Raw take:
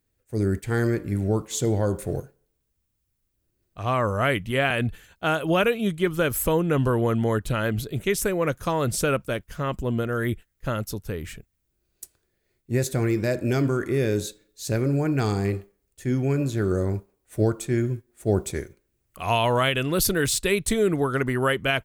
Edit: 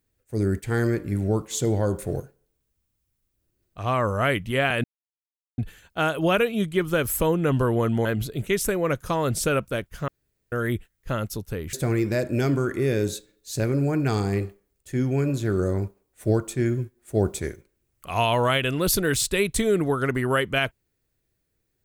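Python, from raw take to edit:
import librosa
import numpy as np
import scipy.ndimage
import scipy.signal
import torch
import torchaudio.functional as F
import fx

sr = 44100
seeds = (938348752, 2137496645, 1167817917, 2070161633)

y = fx.edit(x, sr, fx.insert_silence(at_s=4.84, length_s=0.74),
    fx.cut(start_s=7.31, length_s=0.31),
    fx.room_tone_fill(start_s=9.65, length_s=0.44),
    fx.cut(start_s=11.3, length_s=1.55), tone=tone)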